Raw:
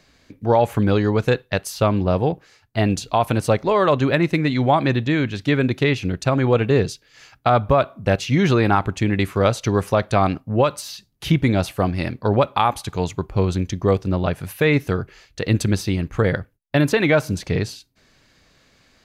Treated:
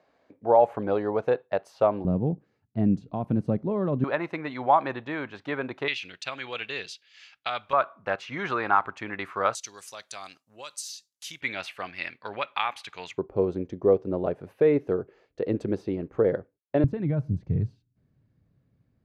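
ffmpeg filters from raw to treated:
ffmpeg -i in.wav -af "asetnsamples=nb_out_samples=441:pad=0,asendcmd='2.05 bandpass f 200;4.04 bandpass f 950;5.88 bandpass f 3000;7.73 bandpass f 1200;9.55 bandpass f 7000;11.41 bandpass f 2300;13.18 bandpass f 440;16.84 bandpass f 120',bandpass=frequency=670:width_type=q:width=1.7:csg=0" out.wav

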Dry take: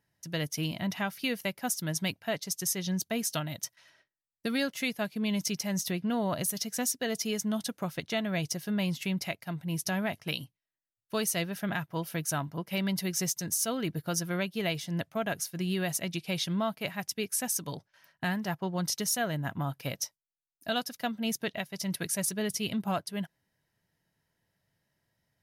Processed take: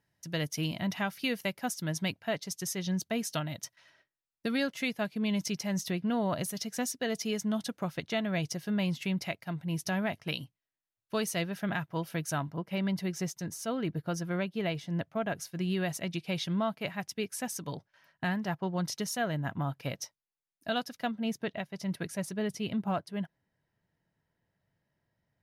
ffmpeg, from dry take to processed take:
ffmpeg -i in.wav -af "asetnsamples=nb_out_samples=441:pad=0,asendcmd='1.65 lowpass f 4300;12.52 lowpass f 1800;15.37 lowpass f 3200;21.11 lowpass f 1700',lowpass=frequency=8000:poles=1" out.wav

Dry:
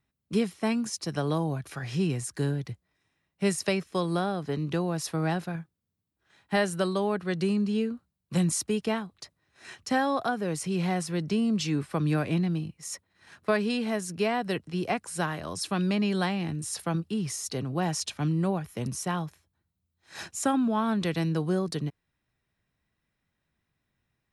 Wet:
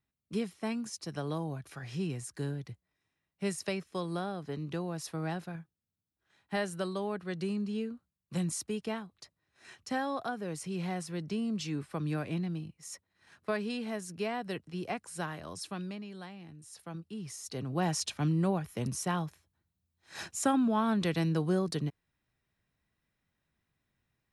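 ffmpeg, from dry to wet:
ffmpeg -i in.wav -af "volume=8.5dB,afade=type=out:start_time=15.53:duration=0.52:silence=0.298538,afade=type=in:start_time=16.63:duration=0.82:silence=0.354813,afade=type=in:start_time=17.45:duration=0.38:silence=0.446684" out.wav

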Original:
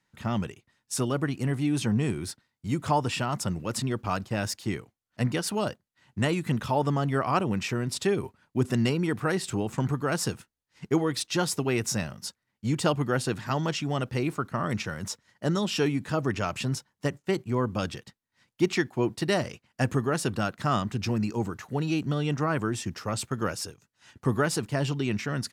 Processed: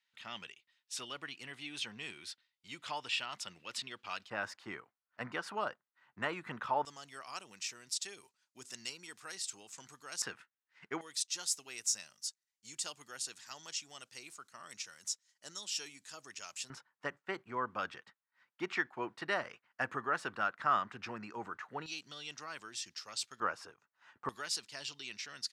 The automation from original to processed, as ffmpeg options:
ffmpeg -i in.wav -af "asetnsamples=nb_out_samples=441:pad=0,asendcmd='4.3 bandpass f 1300;6.85 bandpass f 6300;10.22 bandpass f 1700;11.01 bandpass f 6900;16.7 bandpass f 1400;21.86 bandpass f 4700;23.4 bandpass f 1200;24.29 bandpass f 4700',bandpass=frequency=3200:width_type=q:width=1.6:csg=0" out.wav

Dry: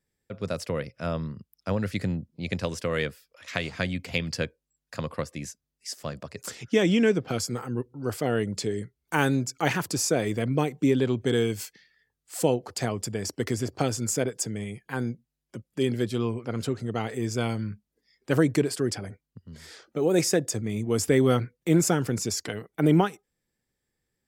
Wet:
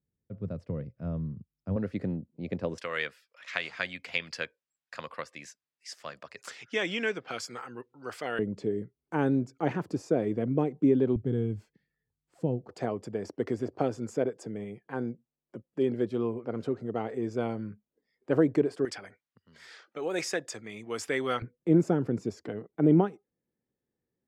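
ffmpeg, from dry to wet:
ffmpeg -i in.wav -af "asetnsamples=nb_out_samples=441:pad=0,asendcmd='1.76 bandpass f 370;2.78 bandpass f 1800;8.39 bandpass f 320;11.16 bandpass f 120;12.69 bandpass f 470;18.85 bandpass f 1700;21.42 bandpass f 310',bandpass=frequency=120:width_type=q:width=0.72:csg=0" out.wav

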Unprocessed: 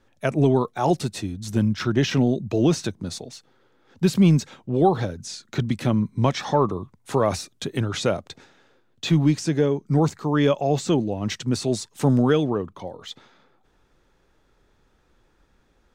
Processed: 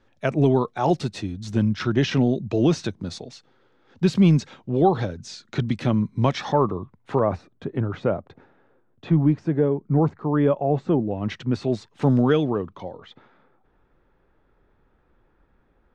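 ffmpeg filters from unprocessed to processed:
ffmpeg -i in.wav -af "asetnsamples=nb_out_samples=441:pad=0,asendcmd='6.52 lowpass f 2400;7.19 lowpass f 1300;11.11 lowpass f 2600;12.02 lowpass f 4400;12.98 lowpass f 1900',lowpass=5100" out.wav

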